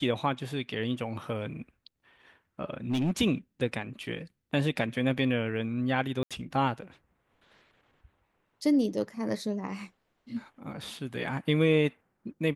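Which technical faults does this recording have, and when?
0:02.90–0:03.11: clipping −23.5 dBFS
0:06.23–0:06.31: drop-out 76 ms

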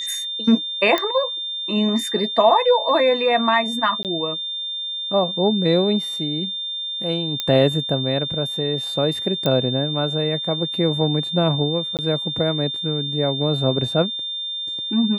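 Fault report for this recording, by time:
whistle 3,600 Hz −25 dBFS
0:00.98: click −7 dBFS
0:04.03–0:04.05: drop-out 18 ms
0:07.40: click −8 dBFS
0:09.46: click −8 dBFS
0:11.97–0:11.99: drop-out 18 ms

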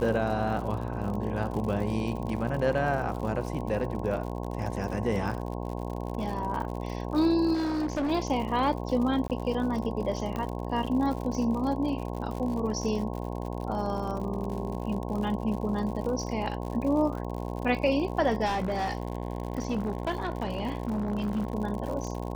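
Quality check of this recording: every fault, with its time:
mains buzz 60 Hz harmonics 18 −34 dBFS
surface crackle 81 per second −35 dBFS
0:07.53–0:08.12: clipping −25.5 dBFS
0:09.28–0:09.30: drop-out 18 ms
0:10.36: click −20 dBFS
0:18.45–0:21.55: clipping −24.5 dBFS

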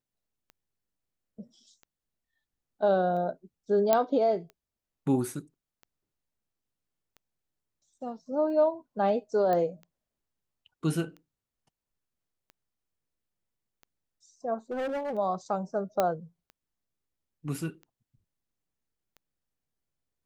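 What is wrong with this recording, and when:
scratch tick 45 rpm −34 dBFS
0:03.93: click −9 dBFS
0:09.53: click −18 dBFS
0:14.71–0:15.17: clipping −29 dBFS
0:16.00: click −12 dBFS

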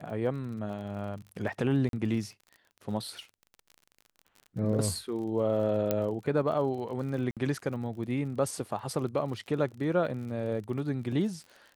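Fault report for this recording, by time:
surface crackle 43 per second −40 dBFS
0:01.89–0:01.93: drop-out 42 ms
0:05.91: click −13 dBFS
0:07.31–0:07.37: drop-out 57 ms

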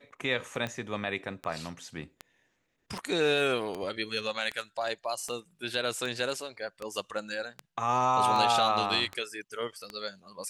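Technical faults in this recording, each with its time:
scratch tick 78 rpm −21 dBFS

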